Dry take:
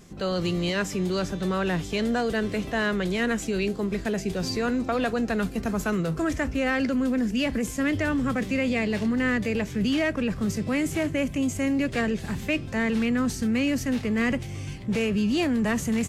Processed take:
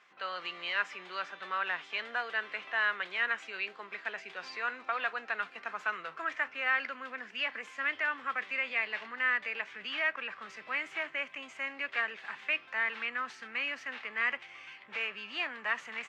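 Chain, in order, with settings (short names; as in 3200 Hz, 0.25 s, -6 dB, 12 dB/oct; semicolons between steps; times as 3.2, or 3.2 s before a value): Butterworth band-pass 1700 Hz, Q 0.92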